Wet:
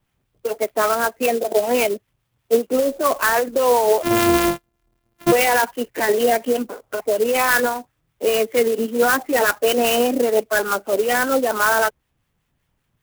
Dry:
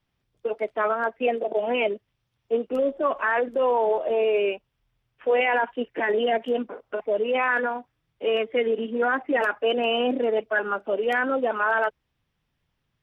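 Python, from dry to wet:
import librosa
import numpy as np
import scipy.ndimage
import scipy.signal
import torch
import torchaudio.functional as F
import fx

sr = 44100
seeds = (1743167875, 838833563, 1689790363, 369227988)

y = fx.sample_sort(x, sr, block=128, at=(4.02, 5.31), fade=0.02)
y = fx.harmonic_tremolo(y, sr, hz=5.1, depth_pct=50, crossover_hz=970.0)
y = fx.clock_jitter(y, sr, seeds[0], jitter_ms=0.047)
y = F.gain(torch.from_numpy(y), 8.0).numpy()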